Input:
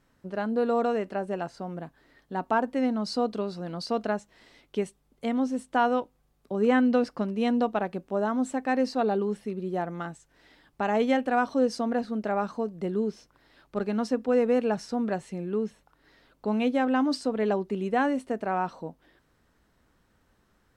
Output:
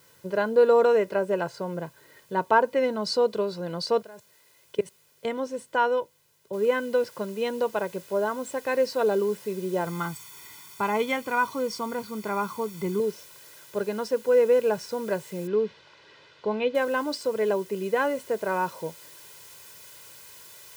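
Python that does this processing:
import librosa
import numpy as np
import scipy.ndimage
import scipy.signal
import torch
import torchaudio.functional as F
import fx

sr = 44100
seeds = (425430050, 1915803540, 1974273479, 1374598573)

y = fx.lowpass(x, sr, hz=5900.0, slope=12, at=(1.66, 2.84))
y = fx.level_steps(y, sr, step_db=24, at=(4.02, 5.25))
y = fx.noise_floor_step(y, sr, seeds[0], at_s=6.53, before_db=-66, after_db=-52, tilt_db=0.0)
y = fx.comb(y, sr, ms=0.9, depth=0.71, at=(9.86, 13.0))
y = fx.lowpass(y, sr, hz=4200.0, slope=24, at=(15.47, 16.75))
y = scipy.signal.sosfilt(scipy.signal.butter(4, 96.0, 'highpass', fs=sr, output='sos'), y)
y = fx.rider(y, sr, range_db=10, speed_s=2.0)
y = y + 0.72 * np.pad(y, (int(2.0 * sr / 1000.0), 0))[:len(y)]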